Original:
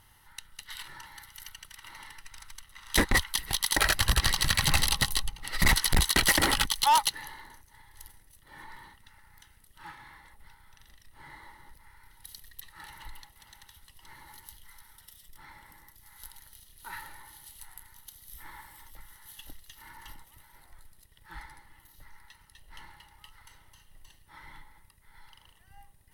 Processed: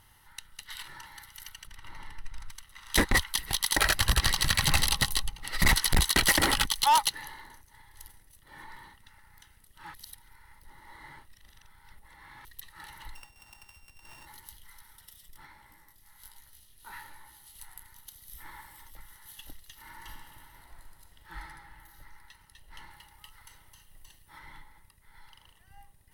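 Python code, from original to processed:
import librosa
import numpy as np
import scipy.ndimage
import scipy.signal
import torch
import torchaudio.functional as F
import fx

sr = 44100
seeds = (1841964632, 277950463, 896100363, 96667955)

y = fx.tilt_eq(x, sr, slope=-2.5, at=(1.67, 2.5))
y = fx.sample_sort(y, sr, block=16, at=(13.14, 14.25), fade=0.02)
y = fx.detune_double(y, sr, cents=42, at=(15.46, 17.53), fade=0.02)
y = fx.reverb_throw(y, sr, start_s=19.81, length_s=1.62, rt60_s=2.5, drr_db=1.5)
y = fx.high_shelf(y, sr, hz=7800.0, db=6.5, at=(22.91, 24.39))
y = fx.edit(y, sr, fx.reverse_span(start_s=9.94, length_s=2.51), tone=tone)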